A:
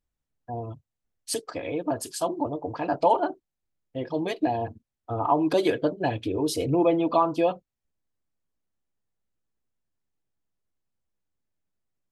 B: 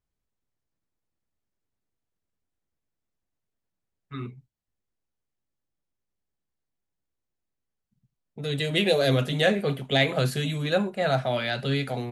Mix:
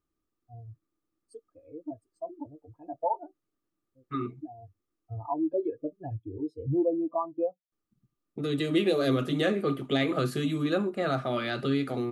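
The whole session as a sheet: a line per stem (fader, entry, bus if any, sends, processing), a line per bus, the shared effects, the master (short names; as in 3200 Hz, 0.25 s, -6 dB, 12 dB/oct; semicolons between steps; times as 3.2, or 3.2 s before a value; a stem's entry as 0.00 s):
-2.5 dB, 0.00 s, no send, bell 80 Hz +9 dB 1.4 oct; spectral expander 2.5:1; auto duck -17 dB, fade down 1.00 s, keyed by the second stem
-2.5 dB, 0.00 s, muted 6.17–7.72, no send, small resonant body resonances 320/1200 Hz, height 18 dB, ringing for 45 ms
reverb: off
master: compressor 1.5:1, threshold -33 dBFS, peak gain reduction 7.5 dB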